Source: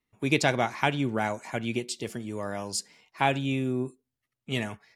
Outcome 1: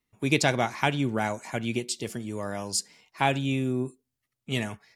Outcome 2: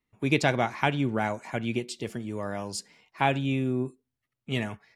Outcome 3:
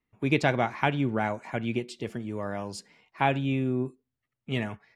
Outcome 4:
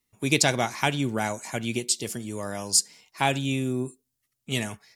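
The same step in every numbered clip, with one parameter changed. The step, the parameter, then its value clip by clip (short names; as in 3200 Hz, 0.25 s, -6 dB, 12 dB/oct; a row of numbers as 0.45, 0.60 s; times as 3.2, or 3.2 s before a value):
tone controls, treble: +4, -5, -13, +13 dB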